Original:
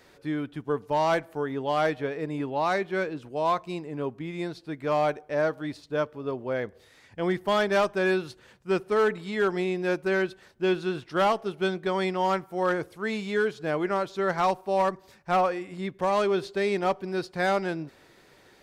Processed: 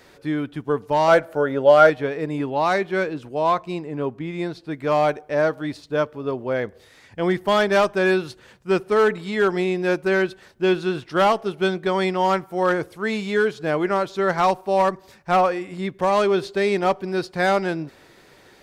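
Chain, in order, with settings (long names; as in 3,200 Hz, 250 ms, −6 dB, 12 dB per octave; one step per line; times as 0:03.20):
0:01.08–0:01.90: hollow resonant body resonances 560/1,400 Hz, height 15 dB
0:03.35–0:04.71: high-shelf EQ 4,600 Hz −5.5 dB
level +5.5 dB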